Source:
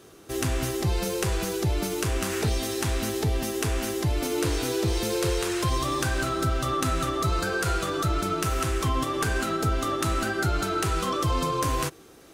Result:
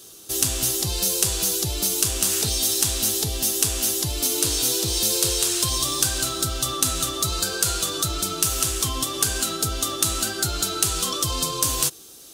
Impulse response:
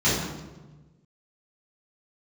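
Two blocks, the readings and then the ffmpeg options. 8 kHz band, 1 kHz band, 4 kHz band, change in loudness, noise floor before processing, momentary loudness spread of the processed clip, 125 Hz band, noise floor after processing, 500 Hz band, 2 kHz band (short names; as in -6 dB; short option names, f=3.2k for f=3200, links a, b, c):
+14.0 dB, -3.5 dB, +10.0 dB, +5.5 dB, -50 dBFS, 4 LU, -3.5 dB, -45 dBFS, -3.5 dB, -2.5 dB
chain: -af "aexciter=amount=5.2:drive=6:freq=3k,volume=-3.5dB"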